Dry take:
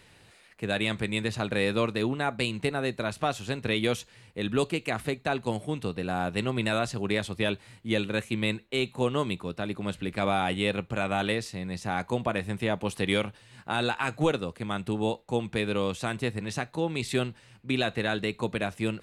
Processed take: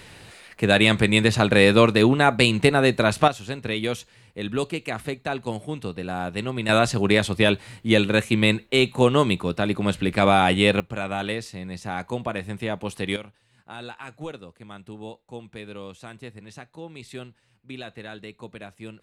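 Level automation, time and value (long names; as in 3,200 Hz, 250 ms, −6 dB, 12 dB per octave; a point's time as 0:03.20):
+11 dB
from 0:03.28 +0.5 dB
from 0:06.69 +9 dB
from 0:10.80 0 dB
from 0:13.16 −10 dB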